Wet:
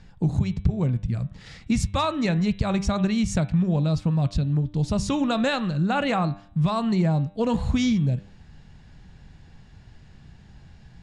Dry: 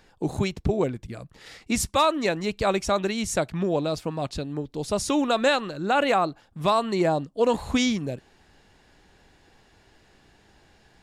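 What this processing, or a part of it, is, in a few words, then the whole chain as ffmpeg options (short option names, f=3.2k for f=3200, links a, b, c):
jukebox: -af "lowpass=7.8k,lowshelf=f=240:t=q:w=1.5:g=13,acompressor=threshold=-19dB:ratio=4,lowpass=11k,bandreject=f=99.18:t=h:w=4,bandreject=f=198.36:t=h:w=4,bandreject=f=297.54:t=h:w=4,bandreject=f=396.72:t=h:w=4,bandreject=f=495.9:t=h:w=4,bandreject=f=595.08:t=h:w=4,bandreject=f=694.26:t=h:w=4,bandreject=f=793.44:t=h:w=4,bandreject=f=892.62:t=h:w=4,bandreject=f=991.8:t=h:w=4,bandreject=f=1.09098k:t=h:w=4,bandreject=f=1.19016k:t=h:w=4,bandreject=f=1.28934k:t=h:w=4,bandreject=f=1.38852k:t=h:w=4,bandreject=f=1.4877k:t=h:w=4,bandreject=f=1.58688k:t=h:w=4,bandreject=f=1.68606k:t=h:w=4,bandreject=f=1.78524k:t=h:w=4,bandreject=f=1.88442k:t=h:w=4,bandreject=f=1.9836k:t=h:w=4,bandreject=f=2.08278k:t=h:w=4,bandreject=f=2.18196k:t=h:w=4,bandreject=f=2.28114k:t=h:w=4,bandreject=f=2.38032k:t=h:w=4,bandreject=f=2.4795k:t=h:w=4,bandreject=f=2.57868k:t=h:w=4,bandreject=f=2.67786k:t=h:w=4,bandreject=f=2.77704k:t=h:w=4,bandreject=f=2.87622k:t=h:w=4,bandreject=f=2.9754k:t=h:w=4,bandreject=f=3.07458k:t=h:w=4,bandreject=f=3.17376k:t=h:w=4,bandreject=f=3.27294k:t=h:w=4,bandreject=f=3.37212k:t=h:w=4,bandreject=f=3.4713k:t=h:w=4,bandreject=f=3.57048k:t=h:w=4,bandreject=f=3.66966k:t=h:w=4,bandreject=f=3.76884k:t=h:w=4,bandreject=f=3.86802k:t=h:w=4,bandreject=f=3.9672k:t=h:w=4"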